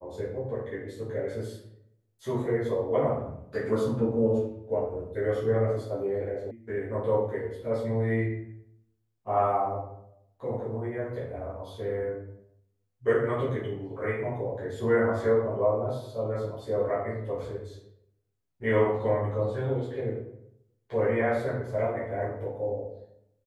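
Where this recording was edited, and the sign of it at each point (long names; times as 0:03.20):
0:06.51: cut off before it has died away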